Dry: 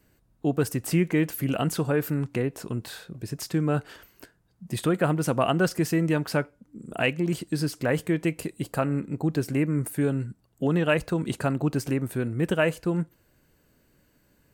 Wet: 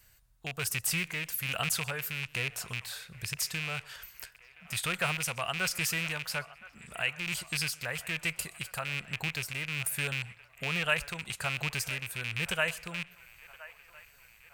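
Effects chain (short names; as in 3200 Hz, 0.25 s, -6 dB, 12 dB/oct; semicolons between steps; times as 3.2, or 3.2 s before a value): rattling part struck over -27 dBFS, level -21 dBFS; passive tone stack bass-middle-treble 10-0-10; in parallel at 0 dB: compressor, threshold -45 dBFS, peak gain reduction 19 dB; on the sum: tremolo 1.2 Hz, depth 42%; band-limited delay 1.02 s, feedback 62%, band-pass 1200 Hz, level -17 dB; warbling echo 0.126 s, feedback 31%, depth 104 cents, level -23.5 dB; gain +3 dB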